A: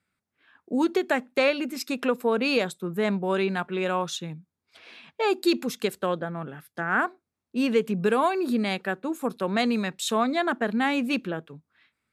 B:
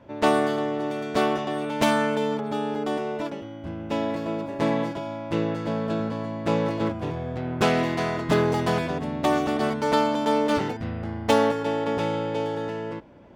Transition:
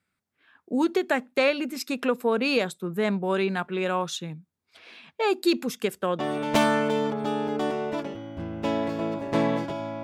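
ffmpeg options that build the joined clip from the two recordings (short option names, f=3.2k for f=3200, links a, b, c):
-filter_complex "[0:a]asettb=1/sr,asplit=3[a][b][c];[a]atrim=end=5.714[d];[b]atrim=start=5.71:end=6.19,asetpts=PTS-STARTPTS,afade=t=in:d=0.004:c=qsin,afade=t=out:st=0.476:d=0.004:c=qsin,bandreject=f=4.1k:w=6.5[e];[c]atrim=start=6.186[f];[d][e]acrossfade=d=0.004:c1=hsin:c2=qsin[g];[g][f]acrossfade=d=0.004:c1=qsin:c2=hsin,apad=whole_dur=10.03,atrim=end=10.03,atrim=end=6.192[h];[1:a]atrim=start=1.458:end=5.3[i];[h][i]acrossfade=d=0.004:c1=hsin:c2=hsin"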